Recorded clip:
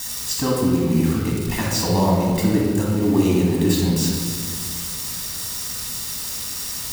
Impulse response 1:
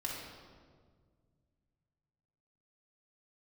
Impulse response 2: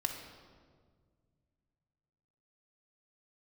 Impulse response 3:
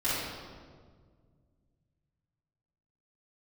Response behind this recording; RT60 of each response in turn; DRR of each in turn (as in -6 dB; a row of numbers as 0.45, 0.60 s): 1; 1.8, 1.8, 1.7 s; -3.0, 3.5, -12.0 dB